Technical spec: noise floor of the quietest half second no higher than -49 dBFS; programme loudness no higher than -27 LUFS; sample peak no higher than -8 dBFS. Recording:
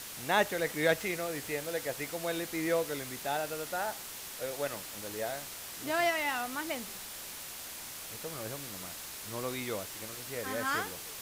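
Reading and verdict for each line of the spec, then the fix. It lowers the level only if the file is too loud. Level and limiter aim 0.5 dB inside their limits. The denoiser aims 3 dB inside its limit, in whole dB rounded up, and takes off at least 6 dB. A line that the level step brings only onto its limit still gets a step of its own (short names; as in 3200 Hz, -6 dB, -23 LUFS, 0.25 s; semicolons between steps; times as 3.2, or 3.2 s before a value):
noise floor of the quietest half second -44 dBFS: fail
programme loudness -34.5 LUFS: OK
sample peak -13.5 dBFS: OK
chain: denoiser 8 dB, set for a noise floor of -44 dBFS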